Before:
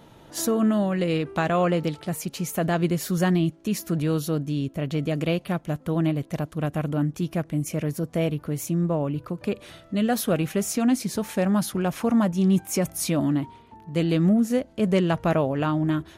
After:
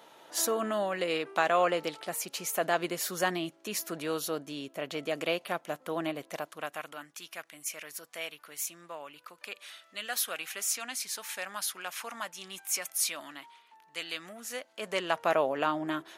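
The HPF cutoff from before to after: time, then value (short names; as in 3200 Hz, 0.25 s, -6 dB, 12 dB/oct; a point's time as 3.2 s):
6.27 s 570 Hz
7.05 s 1500 Hz
14.32 s 1500 Hz
15.47 s 530 Hz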